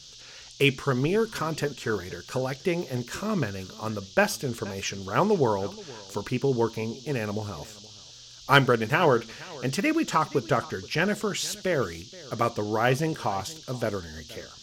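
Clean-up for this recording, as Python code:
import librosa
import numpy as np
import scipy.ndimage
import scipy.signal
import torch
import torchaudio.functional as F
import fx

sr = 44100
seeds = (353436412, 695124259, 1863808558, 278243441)

y = fx.fix_declip(x, sr, threshold_db=-5.5)
y = fx.noise_reduce(y, sr, print_start_s=7.97, print_end_s=8.47, reduce_db=25.0)
y = fx.fix_echo_inverse(y, sr, delay_ms=474, level_db=-20.5)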